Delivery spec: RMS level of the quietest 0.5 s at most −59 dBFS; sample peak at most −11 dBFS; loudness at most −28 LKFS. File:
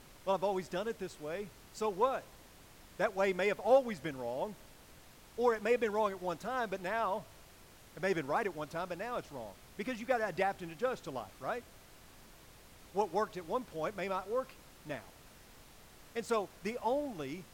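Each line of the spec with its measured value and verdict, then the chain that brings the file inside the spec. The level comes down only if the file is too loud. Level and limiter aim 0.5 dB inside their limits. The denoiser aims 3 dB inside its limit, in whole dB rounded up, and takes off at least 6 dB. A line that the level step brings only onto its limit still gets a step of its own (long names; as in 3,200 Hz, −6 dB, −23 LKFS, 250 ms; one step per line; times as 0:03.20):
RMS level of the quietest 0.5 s −58 dBFS: out of spec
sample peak −17.0 dBFS: in spec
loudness −36.0 LKFS: in spec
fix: broadband denoise 6 dB, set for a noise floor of −58 dBFS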